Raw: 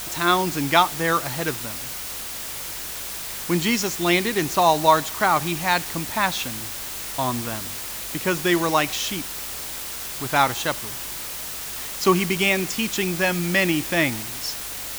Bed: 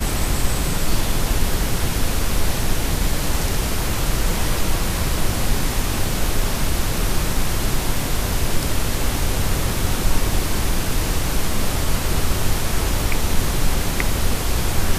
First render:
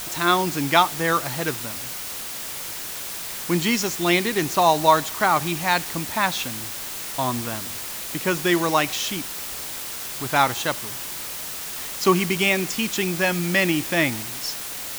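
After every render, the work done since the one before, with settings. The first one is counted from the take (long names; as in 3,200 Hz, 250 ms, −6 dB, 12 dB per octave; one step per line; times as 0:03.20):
hum removal 50 Hz, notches 2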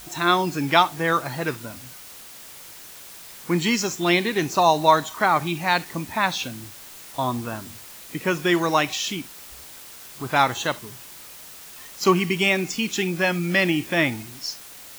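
noise reduction from a noise print 10 dB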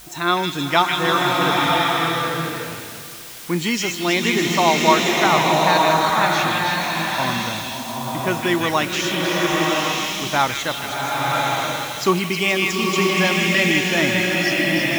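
echo through a band-pass that steps 158 ms, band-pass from 2,700 Hz, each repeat 0.7 octaves, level −0.5 dB
slow-attack reverb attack 1,060 ms, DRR −2 dB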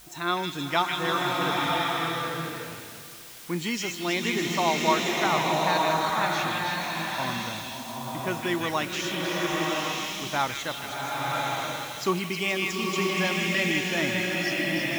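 level −8 dB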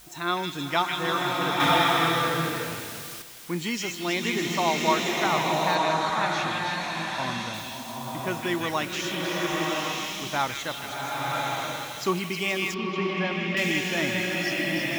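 0:01.60–0:03.22: clip gain +5.5 dB
0:05.75–0:07.54: low-pass filter 8,400 Hz
0:12.74–0:13.57: high-frequency loss of the air 250 metres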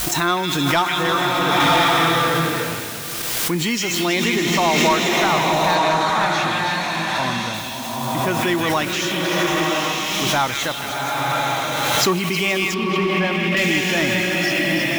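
leveller curve on the samples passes 2
background raised ahead of every attack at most 21 dB per second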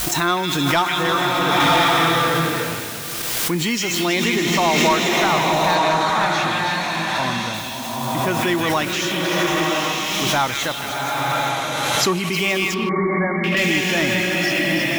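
0:11.49–0:12.33: Chebyshev low-pass filter 11,000 Hz
0:12.89–0:13.44: linear-phase brick-wall low-pass 2,300 Hz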